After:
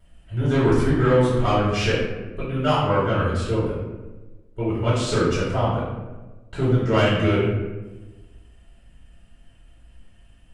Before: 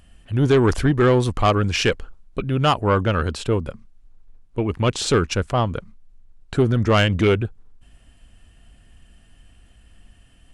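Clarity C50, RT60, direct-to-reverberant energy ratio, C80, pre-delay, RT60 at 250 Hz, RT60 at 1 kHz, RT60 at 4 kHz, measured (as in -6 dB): 0.0 dB, 1.2 s, -17.5 dB, 3.0 dB, 3 ms, 1.5 s, 1.1 s, 0.70 s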